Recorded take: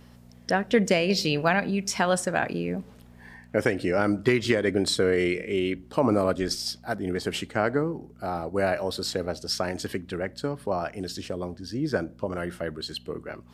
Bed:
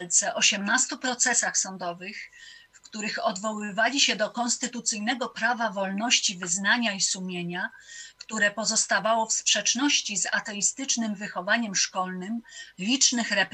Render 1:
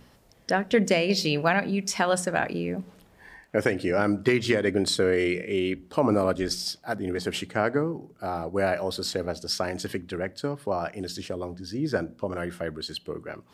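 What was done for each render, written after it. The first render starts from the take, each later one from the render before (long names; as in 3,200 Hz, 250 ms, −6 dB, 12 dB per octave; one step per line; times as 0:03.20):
hum removal 60 Hz, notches 4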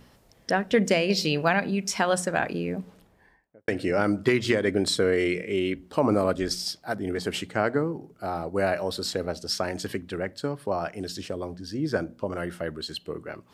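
0:02.77–0:03.68: fade out and dull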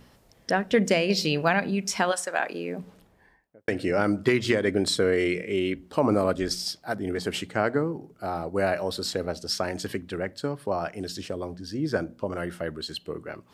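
0:02.11–0:02.79: high-pass filter 850 Hz → 210 Hz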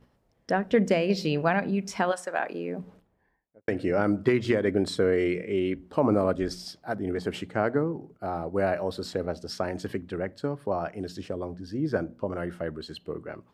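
noise gate −52 dBFS, range −9 dB
high-shelf EQ 2,400 Hz −11.5 dB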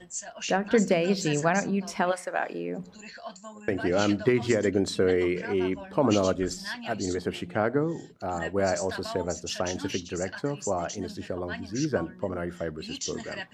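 mix in bed −14 dB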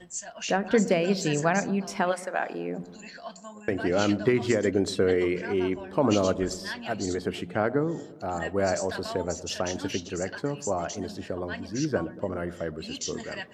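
delay with a low-pass on its return 116 ms, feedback 61%, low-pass 1,000 Hz, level −17 dB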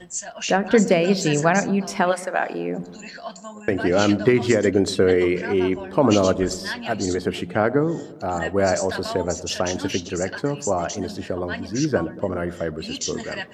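level +6 dB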